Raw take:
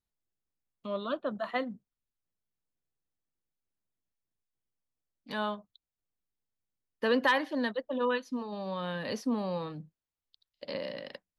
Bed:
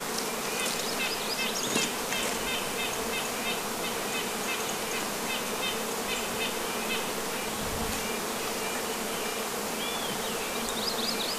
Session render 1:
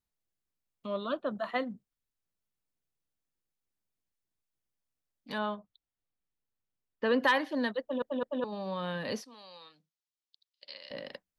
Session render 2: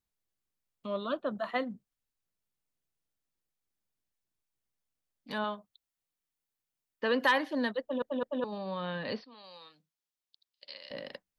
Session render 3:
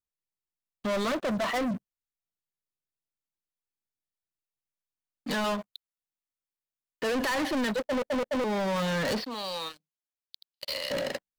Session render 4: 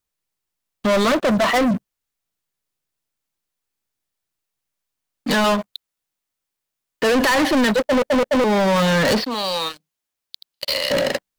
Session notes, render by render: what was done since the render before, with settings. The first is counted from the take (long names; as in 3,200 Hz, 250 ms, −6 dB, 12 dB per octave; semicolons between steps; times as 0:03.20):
0:05.38–0:07.20: high-frequency loss of the air 160 metres; 0:07.81: stutter in place 0.21 s, 3 plays; 0:09.24–0:10.91: resonant band-pass 4,700 Hz, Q 1.1
0:05.44–0:07.28: spectral tilt +1.5 dB per octave; 0:08.58–0:09.44: elliptic low-pass filter 4,600 Hz
brickwall limiter −25.5 dBFS, peak gain reduction 11.5 dB; leveller curve on the samples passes 5
level +11.5 dB